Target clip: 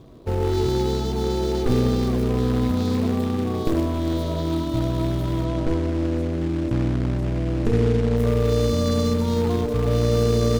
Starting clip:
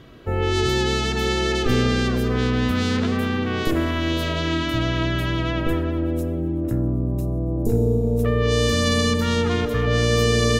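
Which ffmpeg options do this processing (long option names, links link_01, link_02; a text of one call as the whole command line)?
ffmpeg -i in.wav -filter_complex "[0:a]asuperstop=centerf=2000:order=8:qfactor=0.82,acrusher=bits=3:mode=log:mix=0:aa=0.000001,asettb=1/sr,asplit=3[link_01][link_02][link_03];[link_01]atrim=end=5.444[link_04];[link_02]atrim=start=5.44:end=8.17,asetpts=PTS-STARTPTS,afade=type=in:duration=0.004:curve=qsin,afade=type=out:start_time=2.726:duration=0.004:curve=qsin,acrossover=split=9400[link_05][link_06];[link_06]acompressor=threshold=-57dB:ratio=4:attack=1:release=60[link_07];[link_05][link_07]amix=inputs=2:normalize=0[link_08];[link_03]atrim=start=8.166[link_09];[link_04][link_08]acrossfade=duration=0.004:curve1=hsin:curve2=qsin[link_10];[link_10][link_09]acrossfade=duration=0.004:curve1=qsin:curve2=hsin,highshelf=frequency=3700:gain=-11.5" out.wav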